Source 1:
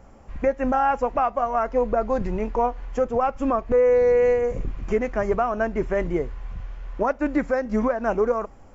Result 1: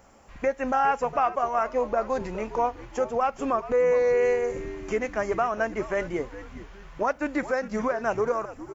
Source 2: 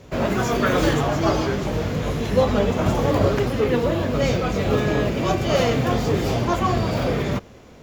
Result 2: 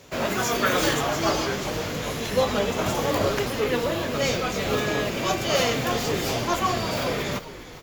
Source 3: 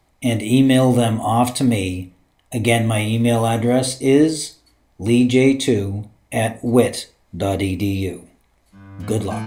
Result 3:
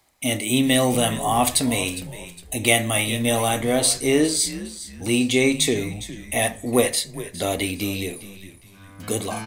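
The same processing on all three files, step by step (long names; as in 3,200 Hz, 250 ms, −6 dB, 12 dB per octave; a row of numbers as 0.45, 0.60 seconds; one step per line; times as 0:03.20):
spectral tilt +2.5 dB per octave
on a send: echo with shifted repeats 409 ms, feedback 35%, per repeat −98 Hz, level −14.5 dB
on the sum: level −1.5 dB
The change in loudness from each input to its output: −3.5, −3.0, −3.0 LU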